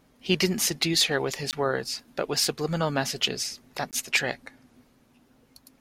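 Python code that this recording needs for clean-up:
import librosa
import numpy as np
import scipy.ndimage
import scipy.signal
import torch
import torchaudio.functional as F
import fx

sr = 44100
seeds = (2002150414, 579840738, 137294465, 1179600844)

y = fx.fix_declip(x, sr, threshold_db=-10.5)
y = fx.fix_interpolate(y, sr, at_s=(1.51, 3.91), length_ms=18.0)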